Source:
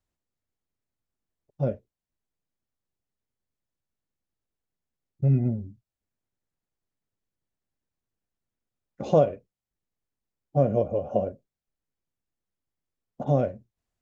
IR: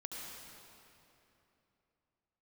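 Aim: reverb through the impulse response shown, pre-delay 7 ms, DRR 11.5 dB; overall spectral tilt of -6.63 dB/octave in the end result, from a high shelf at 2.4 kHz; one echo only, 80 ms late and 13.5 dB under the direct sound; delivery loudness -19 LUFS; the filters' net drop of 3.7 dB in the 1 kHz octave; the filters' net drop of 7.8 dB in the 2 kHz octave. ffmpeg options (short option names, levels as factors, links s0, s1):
-filter_complex "[0:a]equalizer=f=1000:t=o:g=-4.5,equalizer=f=2000:t=o:g=-7,highshelf=f=2400:g=-5.5,aecho=1:1:80:0.211,asplit=2[s0][s1];[1:a]atrim=start_sample=2205,adelay=7[s2];[s1][s2]afir=irnorm=-1:irlink=0,volume=0.299[s3];[s0][s3]amix=inputs=2:normalize=0,volume=2.51"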